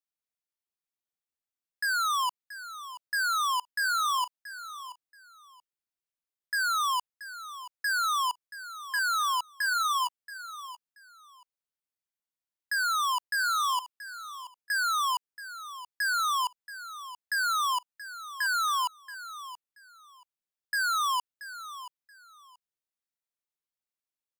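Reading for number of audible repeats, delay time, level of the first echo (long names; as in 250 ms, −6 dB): 2, 679 ms, −14.0 dB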